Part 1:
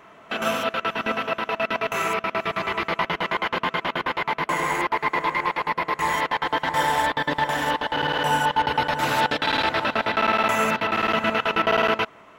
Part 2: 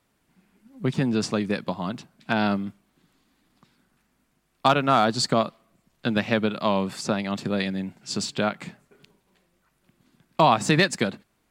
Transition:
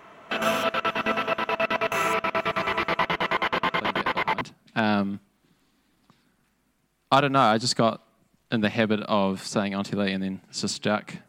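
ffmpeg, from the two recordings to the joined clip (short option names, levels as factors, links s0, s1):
-filter_complex "[1:a]asplit=2[s0][s1];[0:a]apad=whole_dur=11.28,atrim=end=11.28,atrim=end=4.412[s2];[s1]atrim=start=1.938:end=8.81[s3];[s0]atrim=start=1.34:end=1.94,asetpts=PTS-STARTPTS,volume=0.251,afade=t=in:d=0.004:c=hsin,afade=t=out:st=0.596:d=0.004:c=hsin,adelay=168021S[s4];[s2][s3]acrossfade=d=0.004:c1=hsin:c2=hsin[s5];[s5][s4]amix=inputs=2:normalize=0"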